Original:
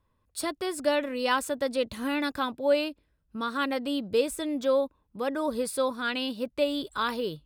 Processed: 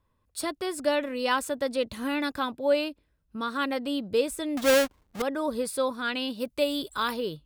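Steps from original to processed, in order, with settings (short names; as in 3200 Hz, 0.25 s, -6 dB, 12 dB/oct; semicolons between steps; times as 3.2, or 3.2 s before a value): 4.57–5.22 half-waves squared off; 6.39–7.12 high shelf 4400 Hz -> 8200 Hz +10 dB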